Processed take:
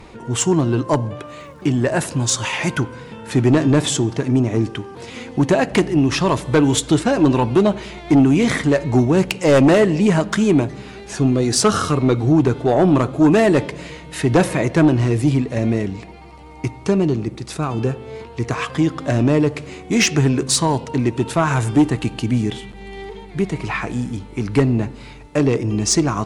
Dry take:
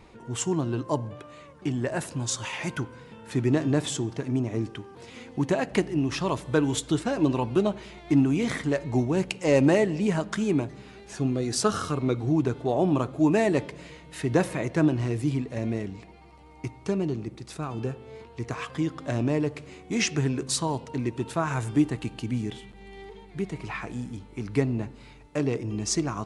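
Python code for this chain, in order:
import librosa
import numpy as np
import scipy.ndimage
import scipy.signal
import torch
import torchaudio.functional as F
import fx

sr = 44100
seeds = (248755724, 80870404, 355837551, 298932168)

y = fx.fold_sine(x, sr, drive_db=7, ceiling_db=-7.5)
y = fx.dmg_crackle(y, sr, seeds[0], per_s=170.0, level_db=-46.0, at=(1.26, 2.3), fade=0.02)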